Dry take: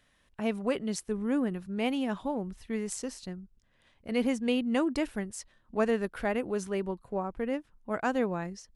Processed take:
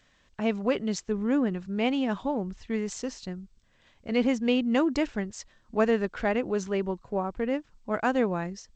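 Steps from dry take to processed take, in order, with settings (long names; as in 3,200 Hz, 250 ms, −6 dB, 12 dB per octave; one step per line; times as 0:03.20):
level +3.5 dB
G.722 64 kbit/s 16,000 Hz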